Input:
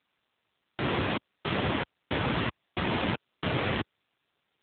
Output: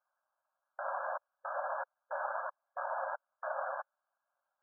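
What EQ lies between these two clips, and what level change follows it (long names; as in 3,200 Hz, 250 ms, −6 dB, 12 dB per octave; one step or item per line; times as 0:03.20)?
linear-phase brick-wall band-pass 530–1,700 Hz
spectral tilt −1.5 dB per octave
−2.5 dB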